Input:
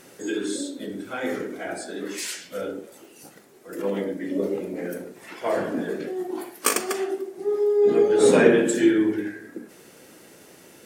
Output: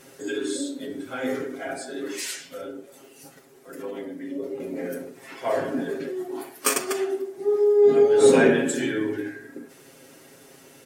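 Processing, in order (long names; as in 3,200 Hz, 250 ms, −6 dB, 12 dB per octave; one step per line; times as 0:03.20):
comb filter 7.4 ms, depth 88%
0:02.41–0:04.60: downward compressor 1.5 to 1, threshold −38 dBFS, peak gain reduction 8 dB
level −3 dB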